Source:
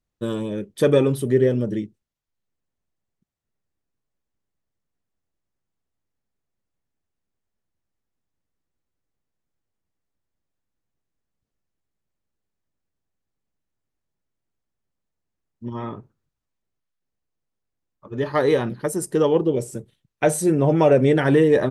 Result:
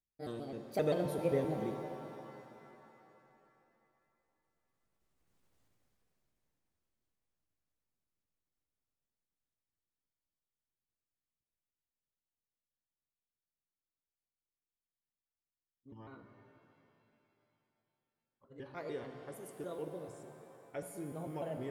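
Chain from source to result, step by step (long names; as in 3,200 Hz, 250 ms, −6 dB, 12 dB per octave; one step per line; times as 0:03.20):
pitch shifter gated in a rhythm +3.5 semitones, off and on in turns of 140 ms
source passing by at 0:05.54, 21 m/s, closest 5.8 metres
reverb with rising layers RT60 3.1 s, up +7 semitones, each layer −8 dB, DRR 6 dB
level +9.5 dB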